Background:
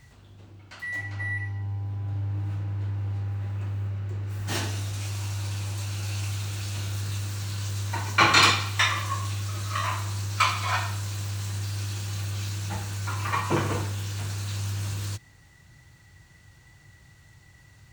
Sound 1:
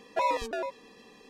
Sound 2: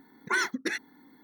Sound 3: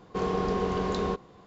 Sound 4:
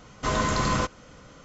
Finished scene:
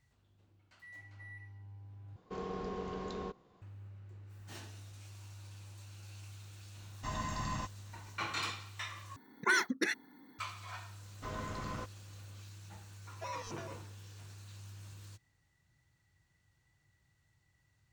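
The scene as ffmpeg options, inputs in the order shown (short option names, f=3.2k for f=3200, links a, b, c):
-filter_complex "[4:a]asplit=2[a][b];[0:a]volume=-20dB[c];[a]aecho=1:1:1.1:0.74[d];[2:a]highpass=42[e];[b]highshelf=f=4.6k:g=-9[f];[1:a]lowpass=f=6k:t=q:w=7.3[g];[c]asplit=3[h][i][j];[h]atrim=end=2.164[k];[3:a]atrim=end=1.46,asetpts=PTS-STARTPTS,volume=-12.5dB[l];[i]atrim=start=3.616:end=9.164[m];[e]atrim=end=1.23,asetpts=PTS-STARTPTS,volume=-2dB[n];[j]atrim=start=10.386[o];[d]atrim=end=1.44,asetpts=PTS-STARTPTS,volume=-16.5dB,afade=t=in:d=0.004:c=hsin,afade=t=out:st=1.436:d=0.004:c=hsin,adelay=6800[p];[f]atrim=end=1.44,asetpts=PTS-STARTPTS,volume=-16.5dB,afade=t=in:d=0.004:c=hsin,afade=t=out:st=1.436:d=0.004:c=hsin,adelay=10990[q];[g]atrim=end=1.29,asetpts=PTS-STARTPTS,volume=-16.5dB,afade=t=in:d=0.004:c=hsin,afade=t=out:st=1.286:d=0.004:c=hsin,adelay=13050[r];[k][l]acrossfade=d=0.004:c1=hsin:c2=hsin[s];[s][m]acrossfade=d=0.004:c1=hsin:c2=hsin[t];[t][n]acrossfade=d=0.004:c1=hsin:c2=hsin[u];[u][o]acrossfade=d=0.004:c1=hsin:c2=hsin[v];[v][p][q][r]amix=inputs=4:normalize=0"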